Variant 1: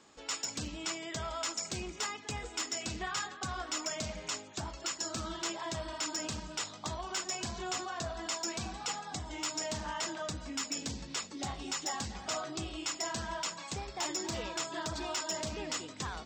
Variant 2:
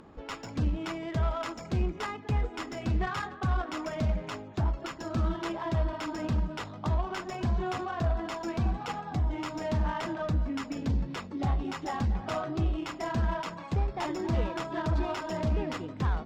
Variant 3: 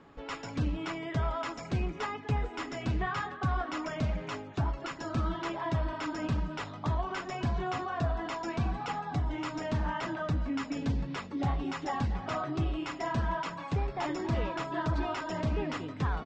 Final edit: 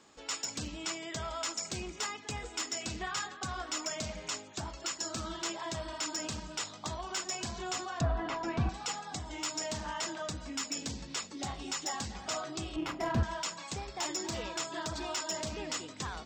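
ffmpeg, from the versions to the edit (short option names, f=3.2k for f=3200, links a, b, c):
-filter_complex "[0:a]asplit=3[a][b][c];[a]atrim=end=8.012[d];[2:a]atrim=start=8.008:end=8.692[e];[b]atrim=start=8.688:end=12.762[f];[1:a]atrim=start=12.758:end=13.232[g];[c]atrim=start=13.228[h];[d][e]acrossfade=d=0.004:c1=hsin:c2=hsin[i];[i][f]acrossfade=d=0.004:c1=hsin:c2=hsin[j];[j][g]acrossfade=d=0.004:c1=hsin:c2=hsin[k];[k][h]acrossfade=d=0.004:c1=hsin:c2=hsin"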